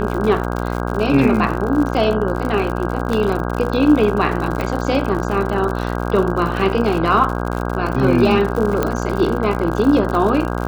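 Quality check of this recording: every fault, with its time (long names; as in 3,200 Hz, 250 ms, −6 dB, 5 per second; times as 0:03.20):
mains buzz 60 Hz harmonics 27 −22 dBFS
surface crackle 80 per second −23 dBFS
0:03.13: drop-out 3 ms
0:04.61: click
0:08.83: click −5 dBFS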